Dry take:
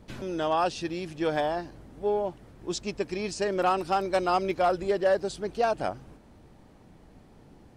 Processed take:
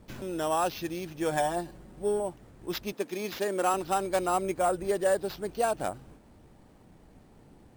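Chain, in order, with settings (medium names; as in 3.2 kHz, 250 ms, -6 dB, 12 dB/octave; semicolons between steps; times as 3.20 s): 1.30–2.20 s: comb 5.5 ms, depth 63%; 2.92–3.74 s: high-pass 190 Hz 24 dB/octave; 4.27–4.85 s: treble shelf 4.4 kHz -11 dB; sample-and-hold 5×; trim -2 dB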